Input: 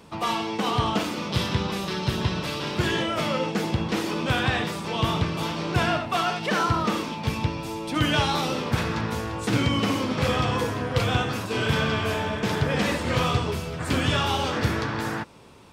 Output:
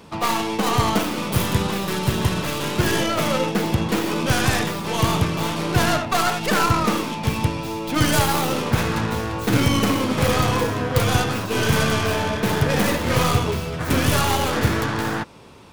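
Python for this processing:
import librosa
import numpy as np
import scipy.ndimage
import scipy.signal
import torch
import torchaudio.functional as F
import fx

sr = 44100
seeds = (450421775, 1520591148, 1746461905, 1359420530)

y = fx.tracing_dist(x, sr, depth_ms=0.31)
y = fx.peak_eq(y, sr, hz=8000.0, db=-2.0, octaves=0.26)
y = y * 10.0 ** (4.5 / 20.0)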